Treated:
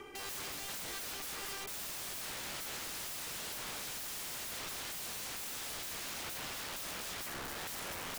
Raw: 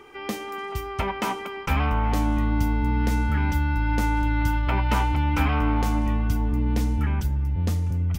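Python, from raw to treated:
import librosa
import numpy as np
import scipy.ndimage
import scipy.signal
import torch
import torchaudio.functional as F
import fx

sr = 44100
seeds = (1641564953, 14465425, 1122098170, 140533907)

y = fx.high_shelf(x, sr, hz=6800.0, db=7.5)
y = fx.notch(y, sr, hz=920.0, q=13.0)
y = fx.rotary_switch(y, sr, hz=0.9, then_hz=6.7, switch_at_s=4.96)
y = fx.echo_wet_highpass(y, sr, ms=718, feedback_pct=70, hz=1500.0, wet_db=-17)
y = (np.mod(10.0 ** (38.5 / 20.0) * y + 1.0, 2.0) - 1.0) / 10.0 ** (38.5 / 20.0)
y = y * librosa.db_to_amplitude(1.0)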